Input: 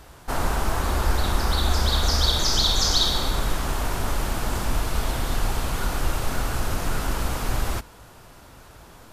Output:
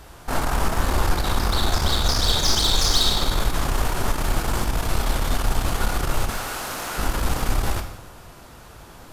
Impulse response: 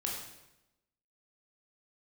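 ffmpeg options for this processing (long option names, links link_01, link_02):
-filter_complex "[0:a]asettb=1/sr,asplit=3[link_01][link_02][link_03];[link_01]atrim=end=6.304[link_04];[link_02]atrim=start=6.3:end=6.98,asetpts=PTS-STARTPTS,afade=type=in:duration=0.004:curve=qsin,afade=type=out:start_time=0.676:duration=0.004:curve=qsin,highpass=frequency=680:poles=1[link_05];[link_03]atrim=start=6.976[link_06];[link_04][link_05]acrossfade=duration=0.004:curve1=hsin:curve2=qsin[link_07];[link_07][link_06]acrossfade=duration=0.004:curve1=qsin:curve2=hsin,aeval=exprs='(tanh(8.91*val(0)+0.5)-tanh(0.5))/8.91':channel_layout=same,asplit=2[link_08][link_09];[1:a]atrim=start_sample=2205[link_10];[link_09][link_10]afir=irnorm=-1:irlink=0,volume=-2.5dB[link_11];[link_08][link_11]amix=inputs=2:normalize=0"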